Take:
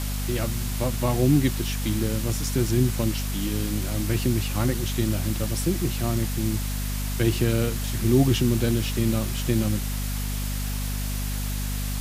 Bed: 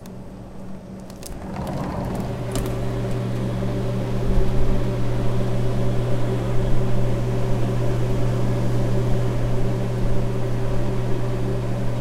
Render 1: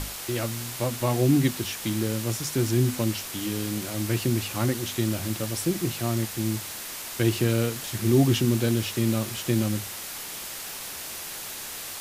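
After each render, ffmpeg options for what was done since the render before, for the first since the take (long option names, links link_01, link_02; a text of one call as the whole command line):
ffmpeg -i in.wav -af "bandreject=frequency=50:width_type=h:width=6,bandreject=frequency=100:width_type=h:width=6,bandreject=frequency=150:width_type=h:width=6,bandreject=frequency=200:width_type=h:width=6,bandreject=frequency=250:width_type=h:width=6" out.wav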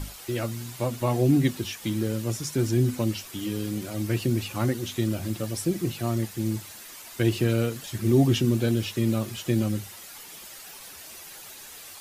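ffmpeg -i in.wav -af "afftdn=noise_reduction=10:noise_floor=-37" out.wav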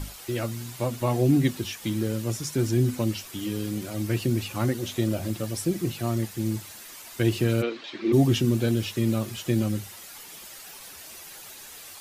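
ffmpeg -i in.wav -filter_complex "[0:a]asettb=1/sr,asplit=3[link_01][link_02][link_03];[link_01]atrim=end=4.784[link_04];[link_02]atrim=start=4.78:end=5.31,asetpts=PTS-STARTPTS,afade=type=in:duration=0.004:curve=qsin,afade=type=out:start_time=0.526:duration=0.004:curve=qsin,equalizer=frequency=590:width_type=o:width=0.77:gain=6.5[link_05];[link_03]atrim=start=5.306[link_06];[link_04][link_05]acrossfade=duration=0.004:curve1=hsin:curve2=qsin[link_07];[link_07][link_06]acrossfade=duration=0.004:curve1=qsin:curve2=hsin,asplit=3[link_08][link_09][link_10];[link_08]afade=type=out:start_time=7.61:duration=0.02[link_11];[link_09]highpass=frequency=260:width=0.5412,highpass=frequency=260:width=1.3066,equalizer=frequency=330:width_type=q:width=4:gain=6,equalizer=frequency=1100:width_type=q:width=4:gain=4,equalizer=frequency=2300:width_type=q:width=4:gain=6,equalizer=frequency=3900:width_type=q:width=4:gain=5,lowpass=frequency=4400:width=0.5412,lowpass=frequency=4400:width=1.3066,afade=type=in:start_time=7.61:duration=0.02,afade=type=out:start_time=8.12:duration=0.02[link_12];[link_10]afade=type=in:start_time=8.12:duration=0.02[link_13];[link_11][link_12][link_13]amix=inputs=3:normalize=0" out.wav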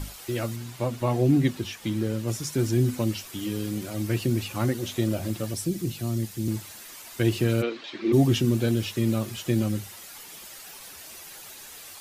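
ffmpeg -i in.wav -filter_complex "[0:a]asettb=1/sr,asplit=3[link_01][link_02][link_03];[link_01]atrim=end=0.564[link_04];[link_02]atrim=start=0.56:end=2.28,asetpts=PTS-STARTPTS,afade=type=in:duration=0.004:curve=qsin,afade=type=out:start_time=1.716:duration=0.004:curve=qsin,highshelf=frequency=5800:gain=-7[link_05];[link_03]atrim=start=2.276[link_06];[link_04][link_05]acrossfade=duration=0.004:curve1=hsin:curve2=qsin[link_07];[link_07][link_06]acrossfade=duration=0.004:curve1=qsin:curve2=hsin,asettb=1/sr,asplit=3[link_08][link_09][link_10];[link_08]atrim=end=5.544[link_11];[link_09]atrim=start=5.54:end=6.48,asetpts=PTS-STARTPTS,afade=type=in:duration=0.004:curve=qsin,afade=type=out:start_time=0.936:duration=0.004:curve=qsin,acrossover=split=360|3000[link_12][link_13][link_14];[link_13]acompressor=threshold=-58dB:ratio=1.5:attack=3.2:release=140:knee=2.83:detection=peak[link_15];[link_12][link_15][link_14]amix=inputs=3:normalize=0[link_16];[link_10]atrim=start=6.476[link_17];[link_11][link_16]acrossfade=duration=0.004:curve1=hsin:curve2=qsin[link_18];[link_18][link_17]acrossfade=duration=0.004:curve1=qsin:curve2=hsin" out.wav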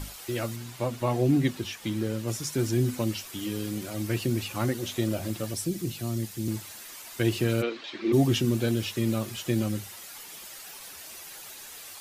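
ffmpeg -i in.wav -af "lowshelf=frequency=350:gain=-3.5" out.wav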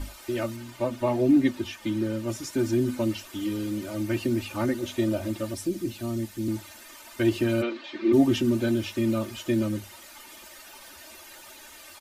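ffmpeg -i in.wav -af "highshelf=frequency=3400:gain=-8.5,aecho=1:1:3.3:0.83" out.wav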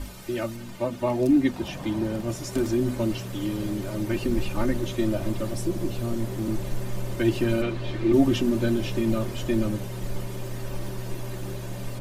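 ffmpeg -i in.wav -i bed.wav -filter_complex "[1:a]volume=-10.5dB[link_01];[0:a][link_01]amix=inputs=2:normalize=0" out.wav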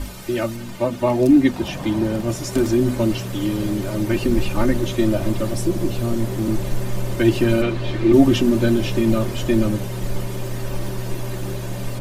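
ffmpeg -i in.wav -af "volume=6.5dB" out.wav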